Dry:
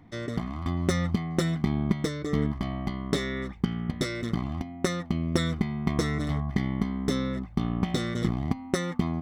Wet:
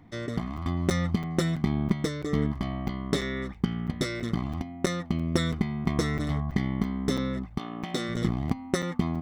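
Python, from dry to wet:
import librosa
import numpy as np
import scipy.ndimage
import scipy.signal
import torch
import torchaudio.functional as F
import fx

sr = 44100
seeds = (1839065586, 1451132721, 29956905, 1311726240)

y = fx.highpass(x, sr, hz=fx.line((7.57, 450.0), (8.08, 180.0)), slope=12, at=(7.57, 8.08), fade=0.02)
y = fx.buffer_crackle(y, sr, first_s=0.57, period_s=0.33, block=256, kind='zero')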